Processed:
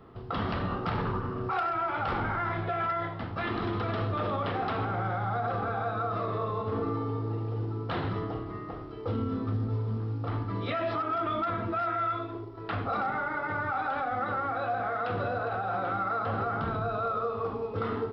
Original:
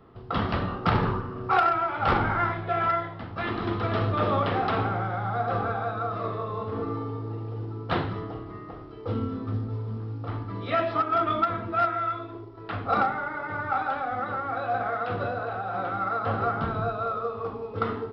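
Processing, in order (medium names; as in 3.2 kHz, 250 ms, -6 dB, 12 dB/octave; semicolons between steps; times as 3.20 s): peak limiter -24 dBFS, peak gain reduction 10.5 dB; trim +1.5 dB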